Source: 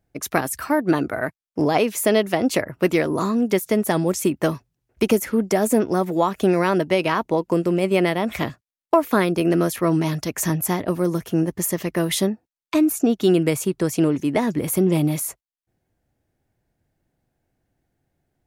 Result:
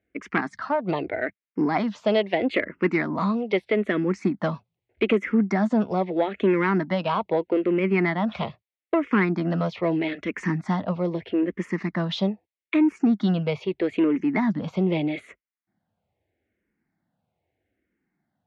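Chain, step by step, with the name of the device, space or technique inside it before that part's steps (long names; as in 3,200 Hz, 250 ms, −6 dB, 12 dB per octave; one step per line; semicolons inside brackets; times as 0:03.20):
barber-pole phaser into a guitar amplifier (frequency shifter mixed with the dry sound −0.79 Hz; soft clipping −12 dBFS, distortion −21 dB; loudspeaker in its box 94–3,800 Hz, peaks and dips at 130 Hz −9 dB, 200 Hz +5 dB, 2,100 Hz +7 dB)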